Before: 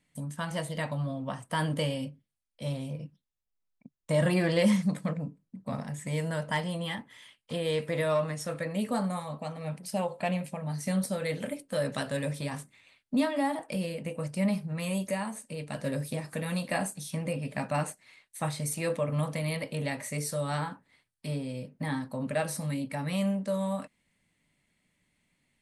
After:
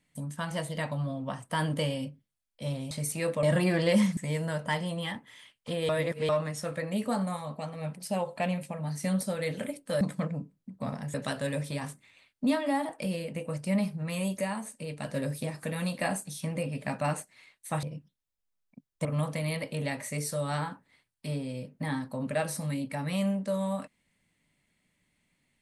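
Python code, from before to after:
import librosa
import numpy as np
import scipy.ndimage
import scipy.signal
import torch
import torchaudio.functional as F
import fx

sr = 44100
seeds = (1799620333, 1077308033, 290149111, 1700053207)

y = fx.edit(x, sr, fx.swap(start_s=2.91, length_s=1.22, other_s=18.53, other_length_s=0.52),
    fx.move(start_s=4.87, length_s=1.13, to_s=11.84),
    fx.reverse_span(start_s=7.72, length_s=0.4), tone=tone)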